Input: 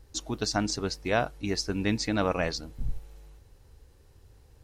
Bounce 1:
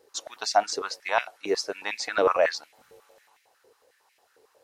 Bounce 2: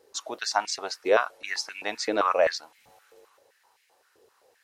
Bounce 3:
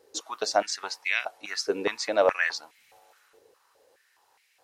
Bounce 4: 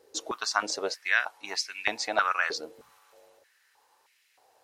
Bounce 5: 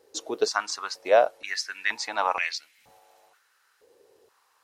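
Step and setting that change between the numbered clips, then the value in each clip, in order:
step-sequenced high-pass, rate: 11 Hz, 7.7 Hz, 4.8 Hz, 3.2 Hz, 2.1 Hz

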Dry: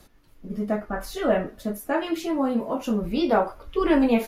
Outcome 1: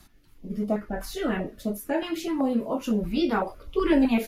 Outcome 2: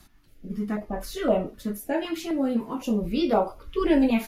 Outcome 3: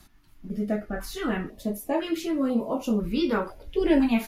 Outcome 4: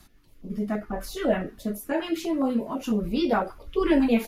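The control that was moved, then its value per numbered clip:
step-sequenced notch, rate: 7.9 Hz, 3.9 Hz, 2 Hz, 12 Hz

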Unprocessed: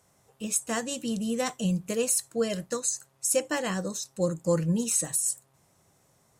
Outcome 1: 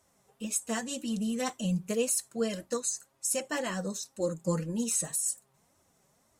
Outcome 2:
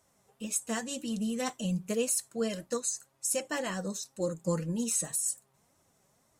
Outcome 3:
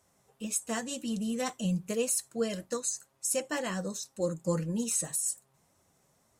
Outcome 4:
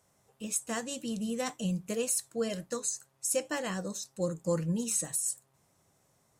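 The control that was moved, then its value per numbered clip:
flange, regen: -1%, +31%, -36%, +88%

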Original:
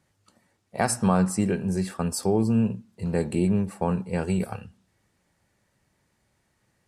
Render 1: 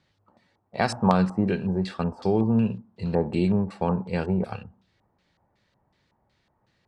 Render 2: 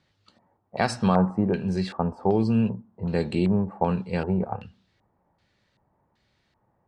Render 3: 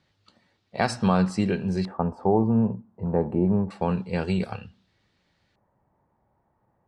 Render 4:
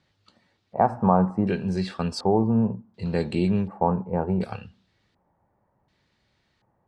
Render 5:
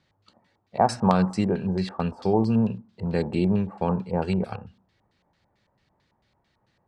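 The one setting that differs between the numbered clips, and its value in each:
LFO low-pass, rate: 2.7 Hz, 1.3 Hz, 0.27 Hz, 0.68 Hz, 4.5 Hz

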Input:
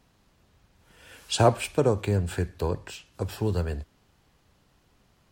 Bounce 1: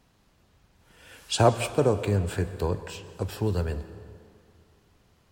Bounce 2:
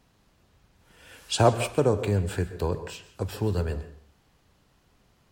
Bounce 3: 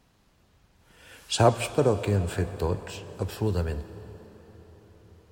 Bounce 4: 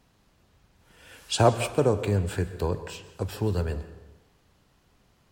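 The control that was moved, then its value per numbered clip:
plate-style reverb, RT60: 2.4 s, 0.52 s, 5.2 s, 1.1 s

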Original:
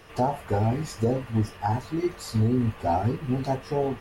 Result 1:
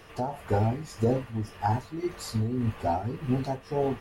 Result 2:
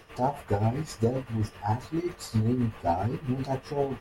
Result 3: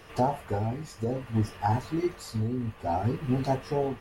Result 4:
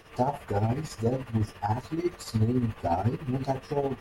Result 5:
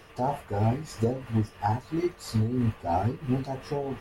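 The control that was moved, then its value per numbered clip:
tremolo, rate: 1.8 Hz, 7.6 Hz, 0.58 Hz, 14 Hz, 3 Hz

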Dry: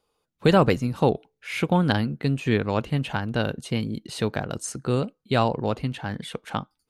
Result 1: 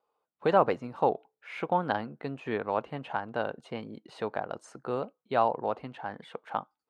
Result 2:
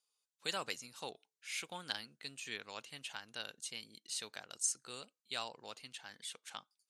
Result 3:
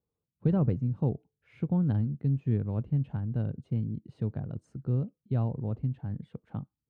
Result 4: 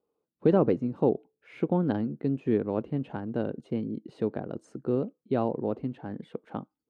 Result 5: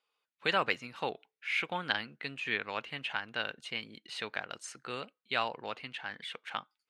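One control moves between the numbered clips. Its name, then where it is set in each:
band-pass filter, frequency: 830 Hz, 7.2 kHz, 110 Hz, 330 Hz, 2.3 kHz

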